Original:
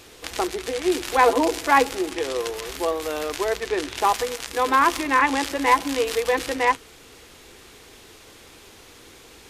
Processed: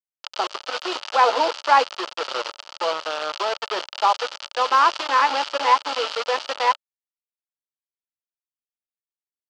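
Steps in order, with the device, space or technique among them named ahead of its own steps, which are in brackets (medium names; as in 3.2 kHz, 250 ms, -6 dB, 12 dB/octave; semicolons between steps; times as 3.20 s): hand-held game console (bit crusher 4-bit; cabinet simulation 460–5800 Hz, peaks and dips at 580 Hz +9 dB, 890 Hz +8 dB, 1.3 kHz +10 dB, 2 kHz -3 dB, 3 kHz +8 dB, 4.6 kHz +7 dB); trim -5 dB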